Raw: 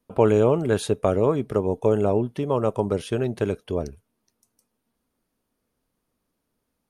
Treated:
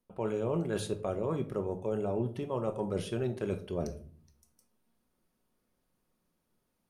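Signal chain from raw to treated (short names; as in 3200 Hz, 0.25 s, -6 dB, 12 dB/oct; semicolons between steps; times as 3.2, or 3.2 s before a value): reverse; compressor 6:1, threshold -27 dBFS, peak gain reduction 14.5 dB; reverse; shoebox room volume 490 m³, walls furnished, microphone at 0.99 m; gain -3 dB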